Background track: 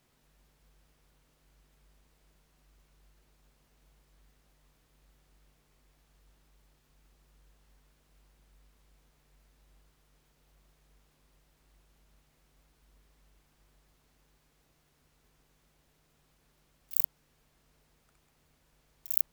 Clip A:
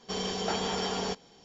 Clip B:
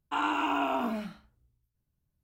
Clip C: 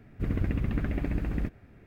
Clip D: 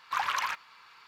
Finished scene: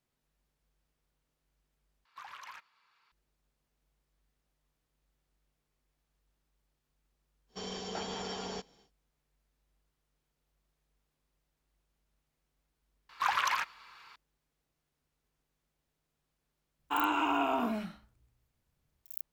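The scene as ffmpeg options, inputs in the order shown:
-filter_complex "[4:a]asplit=2[s0][s1];[0:a]volume=0.211[s2];[s0]alimiter=limit=0.1:level=0:latency=1:release=80[s3];[s2]asplit=2[s4][s5];[s4]atrim=end=2.054[s6];[s3]atrim=end=1.07,asetpts=PTS-STARTPTS,volume=0.15[s7];[s5]atrim=start=3.116[s8];[1:a]atrim=end=1.44,asetpts=PTS-STARTPTS,volume=0.398,afade=t=in:d=0.1,afade=t=out:st=1.34:d=0.1,adelay=7470[s9];[s1]atrim=end=1.07,asetpts=PTS-STARTPTS,afade=t=in:d=0.004:c=hsin,afade=t=out:st=1.066:d=0.004:c=hsin,adelay=13090[s10];[2:a]atrim=end=2.23,asetpts=PTS-STARTPTS,volume=0.891,afade=t=in:d=0.004:c=hsin,afade=t=out:st=2.226:d=0.004:c=hsin,adelay=16790[s11];[s6][s7]acrossfade=d=0.004:c1=hsin:c2=hsin[s12];[s12][s8]acrossfade=d=0.004:c1=hsin:c2=hsin[s13];[s13][s9][s10][s11]amix=inputs=4:normalize=0"

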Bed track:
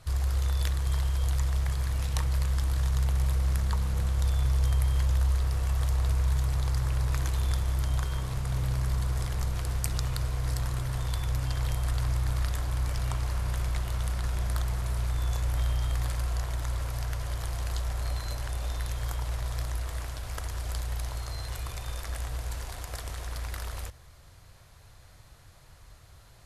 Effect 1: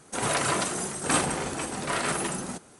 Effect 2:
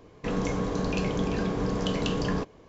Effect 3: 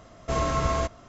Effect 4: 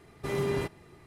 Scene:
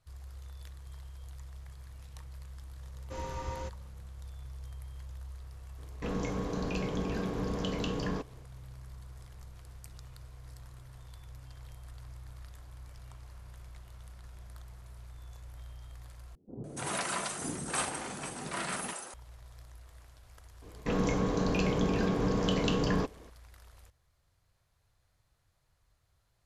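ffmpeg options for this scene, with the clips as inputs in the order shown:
-filter_complex "[2:a]asplit=2[s0][s1];[0:a]volume=0.106[s2];[3:a]afreqshift=-140[s3];[1:a]acrossover=split=420[s4][s5];[s5]adelay=290[s6];[s4][s6]amix=inputs=2:normalize=0[s7];[s2]asplit=2[s8][s9];[s8]atrim=end=16.354[s10];[s7]atrim=end=2.79,asetpts=PTS-STARTPTS,volume=0.422[s11];[s9]atrim=start=19.136[s12];[s3]atrim=end=1.08,asetpts=PTS-STARTPTS,volume=0.211,afade=t=in:d=0.004:c=hsin,afade=t=out:st=1.076:d=0.004:c=hsin,adelay=2820[s13];[s0]atrim=end=2.68,asetpts=PTS-STARTPTS,volume=0.501,afade=t=in:d=0.004:c=hsin,afade=t=out:st=2.676:d=0.004:c=hsin,adelay=5780[s14];[s1]atrim=end=2.68,asetpts=PTS-STARTPTS,volume=0.891,afade=t=in:d=0.004:c=hsin,afade=t=out:st=2.676:d=0.004:c=hsin,adelay=20620[s15];[s10][s11]acrossfade=d=0.004:c1=hsin:c2=hsin[s16];[s16][s12]acrossfade=d=0.004:c1=hsin:c2=hsin[s17];[s17][s13][s14][s15]amix=inputs=4:normalize=0"

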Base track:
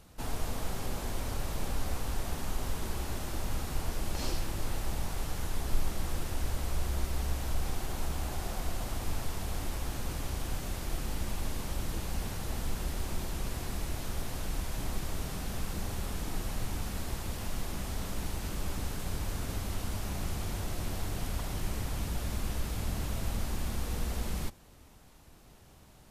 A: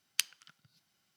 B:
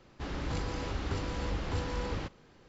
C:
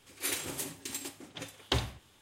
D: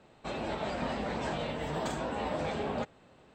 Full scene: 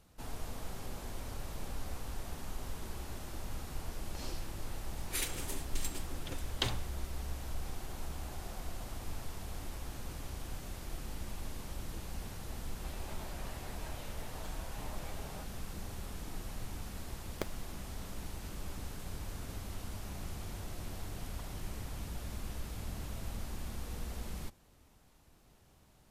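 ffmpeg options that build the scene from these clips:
-filter_complex "[0:a]volume=0.422[s0];[3:a]acrossover=split=1500[s1][s2];[s1]aeval=exprs='val(0)*(1-0.5/2+0.5/2*cos(2*PI*4.9*n/s))':c=same[s3];[s2]aeval=exprs='val(0)*(1-0.5/2-0.5/2*cos(2*PI*4.9*n/s))':c=same[s4];[s3][s4]amix=inputs=2:normalize=0[s5];[4:a]highpass=600[s6];[1:a]acrusher=samples=16:mix=1:aa=0.000001[s7];[s5]atrim=end=2.21,asetpts=PTS-STARTPTS,volume=0.841,afade=t=in:d=0.004:c=hsin,afade=t=out:st=2.206:d=0.004:c=hsin,adelay=4900[s8];[s6]atrim=end=3.34,asetpts=PTS-STARTPTS,volume=0.211,afade=t=in:d=0.004:c=hsin,afade=t=out:st=3.336:d=0.004:c=hsin,adelay=12590[s9];[s7]atrim=end=1.16,asetpts=PTS-STARTPTS,volume=0.562,afade=t=in:d=0.004:c=hsin,afade=t=out:st=1.156:d=0.004:c=hsin,adelay=17220[s10];[s0][s8][s9][s10]amix=inputs=4:normalize=0"

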